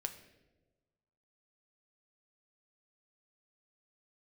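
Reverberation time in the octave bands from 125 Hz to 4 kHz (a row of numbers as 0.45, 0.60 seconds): 1.6, 1.4, 1.4, 0.95, 0.85, 0.75 seconds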